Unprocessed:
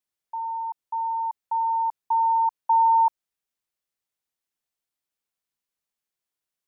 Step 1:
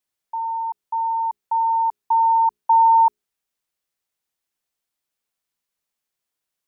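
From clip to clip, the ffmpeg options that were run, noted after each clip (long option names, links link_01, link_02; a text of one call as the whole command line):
ffmpeg -i in.wav -af "bandreject=frequency=60:width_type=h:width=6,bandreject=frequency=120:width_type=h:width=6,bandreject=frequency=180:width_type=h:width=6,bandreject=frequency=240:width_type=h:width=6,bandreject=frequency=300:width_type=h:width=6,bandreject=frequency=360:width_type=h:width=6,bandreject=frequency=420:width_type=h:width=6,volume=4.5dB" out.wav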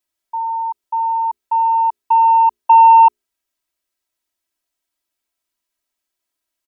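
ffmpeg -i in.wav -af "aeval=exprs='0.316*(cos(1*acos(clip(val(0)/0.316,-1,1)))-cos(1*PI/2))+0.0282*(cos(3*acos(clip(val(0)/0.316,-1,1)))-cos(3*PI/2))':channel_layout=same,aecho=1:1:3.1:0.96,volume=2.5dB" out.wav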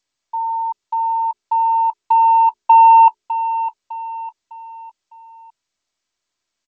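ffmpeg -i in.wav -af "aecho=1:1:605|1210|1815|2420:0.266|0.109|0.0447|0.0183" -ar 16000 -c:a g722 out.g722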